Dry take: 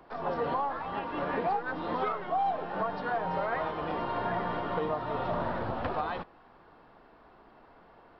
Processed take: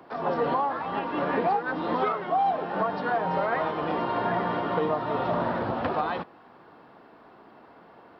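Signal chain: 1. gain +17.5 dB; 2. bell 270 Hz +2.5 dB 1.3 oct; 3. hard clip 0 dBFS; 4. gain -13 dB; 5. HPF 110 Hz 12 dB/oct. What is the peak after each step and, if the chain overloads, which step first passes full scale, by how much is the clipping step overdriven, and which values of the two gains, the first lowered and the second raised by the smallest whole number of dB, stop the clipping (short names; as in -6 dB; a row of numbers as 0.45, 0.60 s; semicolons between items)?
-3.5, -2.5, -2.5, -15.5, -14.0 dBFS; no overload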